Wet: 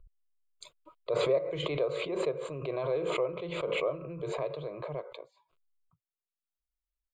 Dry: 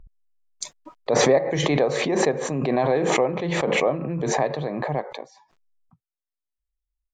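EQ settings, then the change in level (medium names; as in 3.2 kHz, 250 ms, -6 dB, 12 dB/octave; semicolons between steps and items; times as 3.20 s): dynamic bell 6.1 kHz, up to -6 dB, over -46 dBFS, Q 5.7; static phaser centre 1.2 kHz, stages 8; -8.0 dB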